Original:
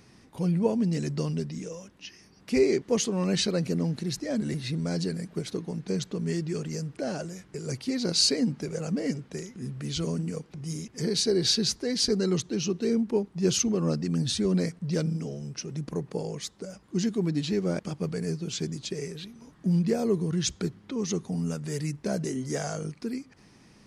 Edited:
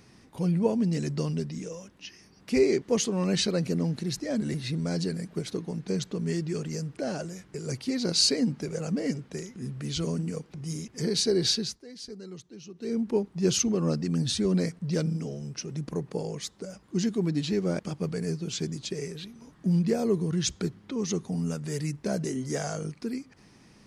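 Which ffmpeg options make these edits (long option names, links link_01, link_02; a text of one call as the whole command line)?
ffmpeg -i in.wav -filter_complex "[0:a]asplit=3[link_01][link_02][link_03];[link_01]atrim=end=11.8,asetpts=PTS-STARTPTS,afade=type=out:start_time=11.45:duration=0.35:silence=0.149624[link_04];[link_02]atrim=start=11.8:end=12.74,asetpts=PTS-STARTPTS,volume=-16.5dB[link_05];[link_03]atrim=start=12.74,asetpts=PTS-STARTPTS,afade=type=in:duration=0.35:silence=0.149624[link_06];[link_04][link_05][link_06]concat=n=3:v=0:a=1" out.wav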